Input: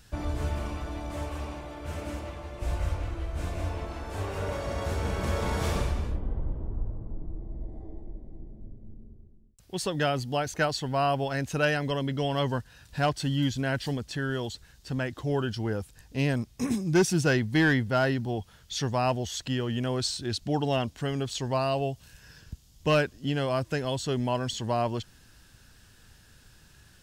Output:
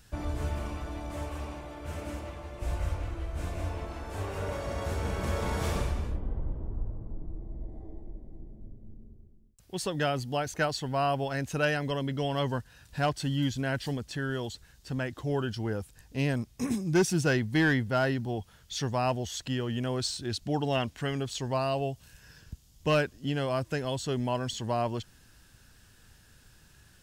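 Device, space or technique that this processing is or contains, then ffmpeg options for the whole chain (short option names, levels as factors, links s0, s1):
exciter from parts: -filter_complex "[0:a]asettb=1/sr,asplit=3[s0][s1][s2];[s0]atrim=end=20.754[s3];[s1]atrim=start=20.75:end=21.18,asetpts=PTS-STARTPTS,afade=t=in:d=0.004:c=qsin,afade=t=out:st=0.426:d=0.004:c=qsin,equalizer=f=2000:w=0.99:g=5.5[s4];[s2]atrim=start=21.176[s5];[s3][s4]acrossfade=d=0.004:c1=hsin:c2=qsin[s6];[s6][s5]acrossfade=d=0.004:c1=qsin:c2=hsin,asplit=2[s7][s8];[s8]highpass=3200,asoftclip=type=tanh:threshold=0.0168,highpass=3900,volume=0.224[s9];[s7][s9]amix=inputs=2:normalize=0,volume=0.794"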